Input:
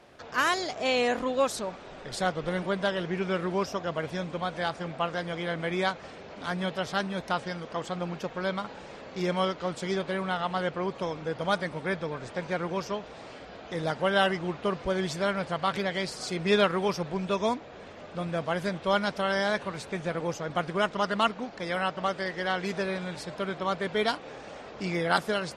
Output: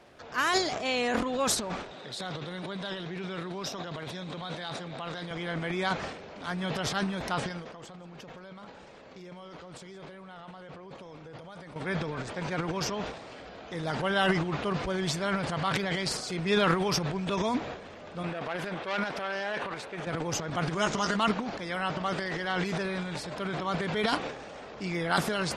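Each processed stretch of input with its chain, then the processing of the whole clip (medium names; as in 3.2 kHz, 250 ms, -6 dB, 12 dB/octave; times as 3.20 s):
1.91–5.31 s: high-pass 110 Hz 24 dB/octave + peaking EQ 3.8 kHz +12.5 dB 0.27 oct + compression 2:1, threshold -36 dBFS
7.49–11.76 s: expander -39 dBFS + compression 8:1, threshold -42 dBFS + delay 168 ms -18 dB
18.23–20.07 s: tone controls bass -13 dB, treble -10 dB + transformer saturation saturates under 1.8 kHz
20.73–21.17 s: peaking EQ 6.6 kHz +13.5 dB 0.56 oct + doubling 14 ms -7.5 dB
whole clip: dynamic bell 540 Hz, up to -4 dB, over -42 dBFS, Q 2.1; transient shaper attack -1 dB, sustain +12 dB; trim -1.5 dB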